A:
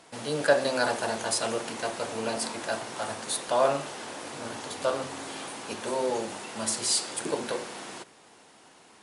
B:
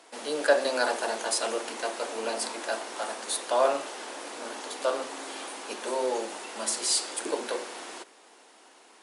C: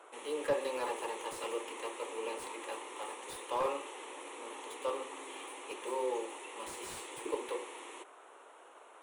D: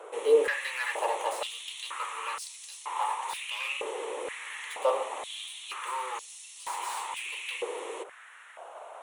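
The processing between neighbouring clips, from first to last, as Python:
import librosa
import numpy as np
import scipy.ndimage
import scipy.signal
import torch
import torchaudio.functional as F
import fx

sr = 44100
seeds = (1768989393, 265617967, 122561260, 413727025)

y1 = scipy.signal.sosfilt(scipy.signal.butter(4, 280.0, 'highpass', fs=sr, output='sos'), x)
y2 = fx.fixed_phaser(y1, sr, hz=1000.0, stages=8)
y2 = fx.dmg_noise_band(y2, sr, seeds[0], low_hz=390.0, high_hz=1400.0, level_db=-53.0)
y2 = fx.slew_limit(y2, sr, full_power_hz=59.0)
y2 = y2 * 10.0 ** (-4.5 / 20.0)
y3 = fx.filter_held_highpass(y2, sr, hz=2.1, low_hz=460.0, high_hz=5000.0)
y3 = y3 * 10.0 ** (5.5 / 20.0)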